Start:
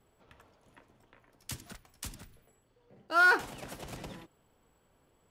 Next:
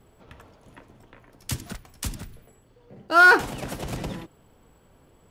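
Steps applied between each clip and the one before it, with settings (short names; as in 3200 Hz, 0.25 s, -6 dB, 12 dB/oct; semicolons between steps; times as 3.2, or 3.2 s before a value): low shelf 410 Hz +5.5 dB; gain +8.5 dB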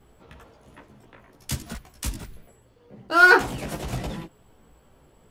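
chorus voices 4, 1.1 Hz, delay 16 ms, depth 3 ms; gain +3.5 dB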